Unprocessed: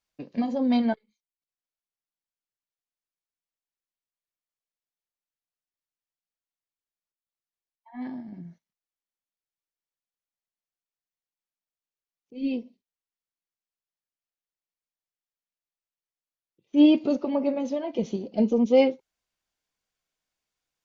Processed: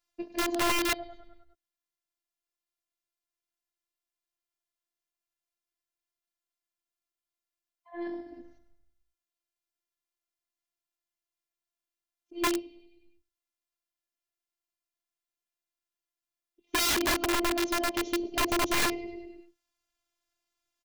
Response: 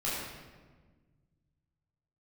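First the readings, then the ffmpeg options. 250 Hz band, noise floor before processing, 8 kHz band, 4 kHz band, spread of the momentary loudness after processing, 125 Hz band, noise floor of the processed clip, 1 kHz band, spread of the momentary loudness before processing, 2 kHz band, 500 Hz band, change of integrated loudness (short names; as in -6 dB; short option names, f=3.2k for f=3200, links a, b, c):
-9.5 dB, under -85 dBFS, n/a, +8.5 dB, 17 LU, -4.5 dB, under -85 dBFS, +5.0 dB, 18 LU, +11.0 dB, -7.5 dB, -4.5 dB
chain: -filter_complex "[0:a]asplit=7[a][b][c][d][e][f][g];[b]adelay=101,afreqshift=-33,volume=-15dB[h];[c]adelay=202,afreqshift=-66,volume=-19.9dB[i];[d]adelay=303,afreqshift=-99,volume=-24.8dB[j];[e]adelay=404,afreqshift=-132,volume=-29.6dB[k];[f]adelay=505,afreqshift=-165,volume=-34.5dB[l];[g]adelay=606,afreqshift=-198,volume=-39.4dB[m];[a][h][i][j][k][l][m]amix=inputs=7:normalize=0,afftfilt=real='hypot(re,im)*cos(PI*b)':imag='0':win_size=512:overlap=0.75,aeval=exprs='(mod(20*val(0)+1,2)-1)/20':c=same,volume=4.5dB"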